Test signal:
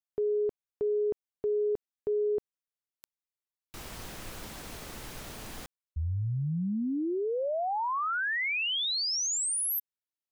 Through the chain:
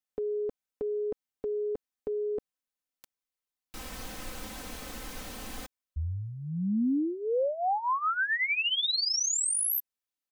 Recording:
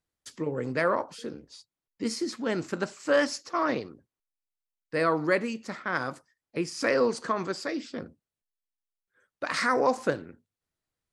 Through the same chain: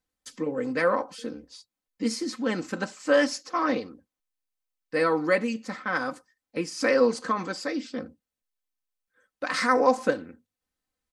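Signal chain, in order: comb 3.9 ms, depth 67%

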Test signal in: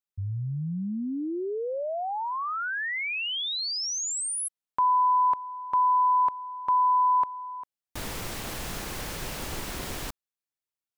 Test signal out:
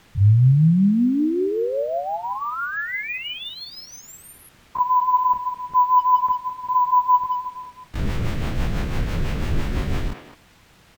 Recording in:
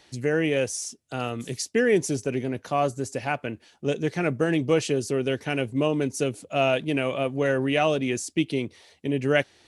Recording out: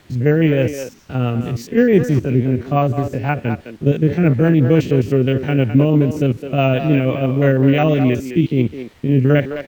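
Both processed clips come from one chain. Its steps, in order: spectrogram pixelated in time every 50 ms; rotary cabinet horn 6 Hz; in parallel at -4 dB: word length cut 8-bit, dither triangular; on the sum: low-pass 9.9 kHz 24 dB/octave; speakerphone echo 210 ms, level -8 dB; careless resampling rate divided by 2×, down none, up hold; tone controls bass +11 dB, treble -11 dB; trim +4 dB

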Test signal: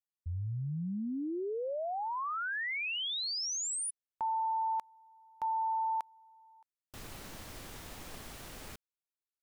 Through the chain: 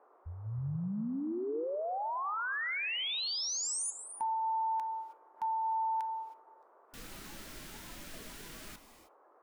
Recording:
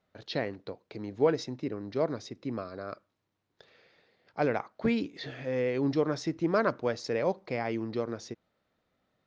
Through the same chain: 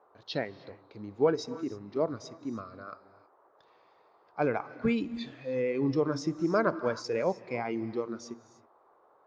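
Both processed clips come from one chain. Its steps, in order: band noise 350–1200 Hz -55 dBFS; gated-style reverb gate 340 ms rising, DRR 10.5 dB; spectral noise reduction 9 dB

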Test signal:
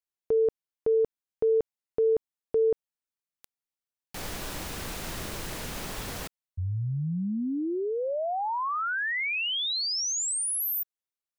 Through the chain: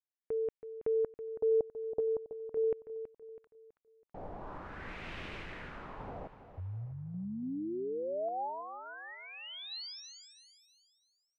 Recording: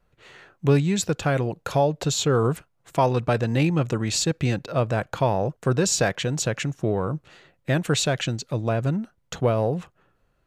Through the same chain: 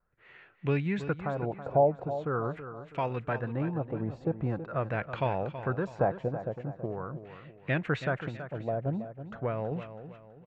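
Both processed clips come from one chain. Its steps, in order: LFO low-pass sine 0.43 Hz 670–2600 Hz; random-step tremolo; feedback delay 326 ms, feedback 40%, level -11.5 dB; trim -7 dB

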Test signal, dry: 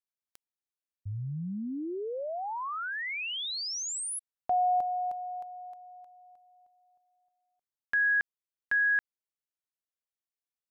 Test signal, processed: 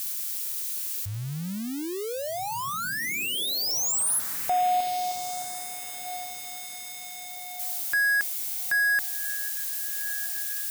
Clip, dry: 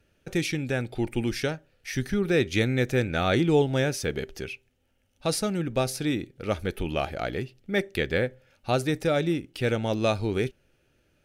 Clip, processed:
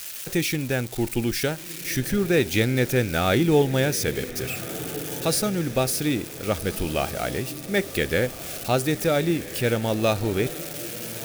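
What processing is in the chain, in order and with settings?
zero-crossing glitches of -26.5 dBFS; echo that smears into a reverb 1490 ms, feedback 43%, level -13.5 dB; trim +2.5 dB

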